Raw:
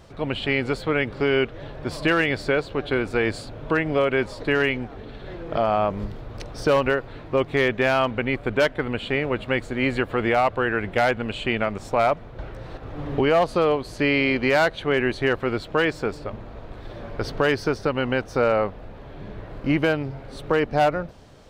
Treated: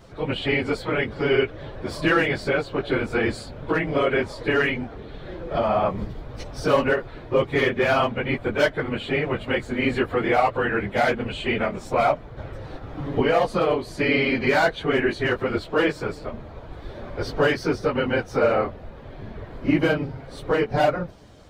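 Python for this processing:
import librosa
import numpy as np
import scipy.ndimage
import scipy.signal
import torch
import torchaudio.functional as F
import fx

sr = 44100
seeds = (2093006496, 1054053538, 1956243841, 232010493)

y = fx.phase_scramble(x, sr, seeds[0], window_ms=50)
y = fx.notch(y, sr, hz=2700.0, q=22.0)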